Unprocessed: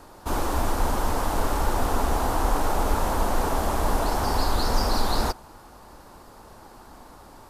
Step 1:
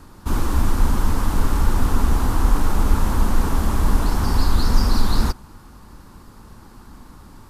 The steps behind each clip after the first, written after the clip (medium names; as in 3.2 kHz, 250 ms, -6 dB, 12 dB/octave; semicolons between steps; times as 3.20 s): FFT filter 210 Hz 0 dB, 670 Hz -17 dB, 1.1 kHz -8 dB; trim +8.5 dB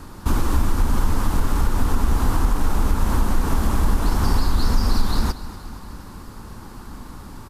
compression 3:1, threshold -21 dBFS, peak gain reduction 10 dB; feedback delay 237 ms, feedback 55%, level -15.5 dB; trim +5.5 dB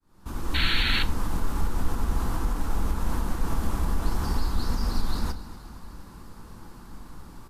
fade-in on the opening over 0.63 s; painted sound noise, 0.54–1.03 s, 1.3–4.5 kHz -19 dBFS; on a send at -9.5 dB: reverberation RT60 0.35 s, pre-delay 6 ms; on the sum: trim -8 dB